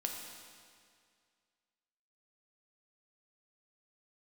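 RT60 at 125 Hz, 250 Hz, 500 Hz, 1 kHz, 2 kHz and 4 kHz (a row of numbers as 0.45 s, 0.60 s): 2.1 s, 2.1 s, 2.1 s, 2.1 s, 2.1 s, 2.0 s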